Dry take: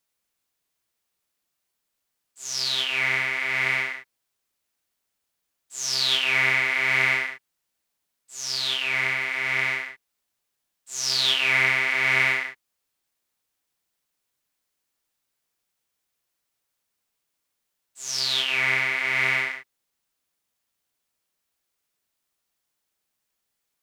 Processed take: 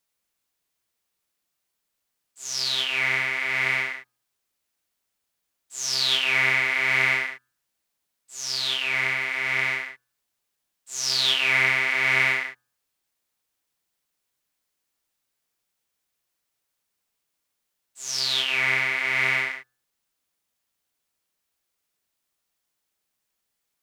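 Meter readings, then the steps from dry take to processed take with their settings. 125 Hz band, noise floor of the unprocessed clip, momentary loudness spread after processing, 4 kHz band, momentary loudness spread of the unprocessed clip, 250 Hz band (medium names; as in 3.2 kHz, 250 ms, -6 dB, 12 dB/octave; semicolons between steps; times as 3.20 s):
-0.5 dB, -80 dBFS, 14 LU, 0.0 dB, 14 LU, 0.0 dB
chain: de-hum 124.2 Hz, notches 14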